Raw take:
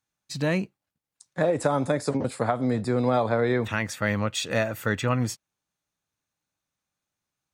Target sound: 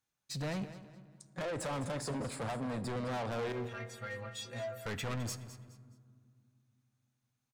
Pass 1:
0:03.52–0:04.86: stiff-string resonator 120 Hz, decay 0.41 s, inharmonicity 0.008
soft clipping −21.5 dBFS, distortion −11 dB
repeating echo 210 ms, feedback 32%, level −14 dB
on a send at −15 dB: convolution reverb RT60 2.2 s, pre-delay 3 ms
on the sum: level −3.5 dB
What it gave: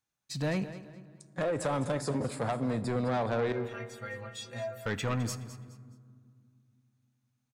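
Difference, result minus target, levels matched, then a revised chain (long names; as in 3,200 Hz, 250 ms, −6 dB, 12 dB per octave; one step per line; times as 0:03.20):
soft clipping: distortion −7 dB
0:03.52–0:04.86: stiff-string resonator 120 Hz, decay 0.41 s, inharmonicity 0.008
soft clipping −31.5 dBFS, distortion −4 dB
repeating echo 210 ms, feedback 32%, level −14 dB
on a send at −15 dB: convolution reverb RT60 2.2 s, pre-delay 3 ms
on the sum: level −3.5 dB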